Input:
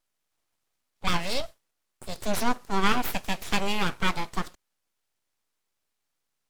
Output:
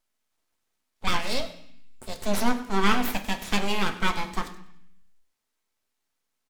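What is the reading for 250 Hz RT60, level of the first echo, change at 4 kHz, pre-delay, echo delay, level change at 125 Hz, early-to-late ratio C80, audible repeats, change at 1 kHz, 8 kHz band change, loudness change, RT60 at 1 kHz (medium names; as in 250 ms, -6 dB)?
0.90 s, -18.5 dB, +1.0 dB, 3 ms, 98 ms, 0.0 dB, 14.0 dB, 2, +0.5 dB, +0.5 dB, +1.0 dB, 0.65 s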